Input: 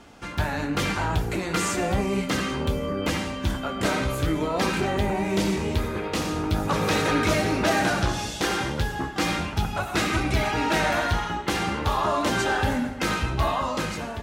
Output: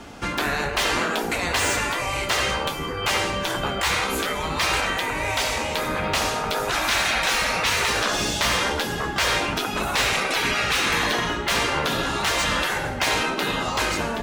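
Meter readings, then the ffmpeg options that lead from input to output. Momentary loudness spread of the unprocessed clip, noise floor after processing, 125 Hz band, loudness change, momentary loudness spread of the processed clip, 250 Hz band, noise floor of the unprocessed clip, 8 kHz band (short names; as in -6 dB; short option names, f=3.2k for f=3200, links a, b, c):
5 LU, -29 dBFS, -5.5 dB, +3.0 dB, 5 LU, -5.0 dB, -34 dBFS, +6.5 dB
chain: -filter_complex "[0:a]afftfilt=real='re*lt(hypot(re,im),0.141)':imag='im*lt(hypot(re,im),0.141)':win_size=1024:overlap=0.75,acrossover=split=270|4100[a][b][c];[c]volume=36dB,asoftclip=hard,volume=-36dB[d];[a][b][d]amix=inputs=3:normalize=0,volume=8.5dB"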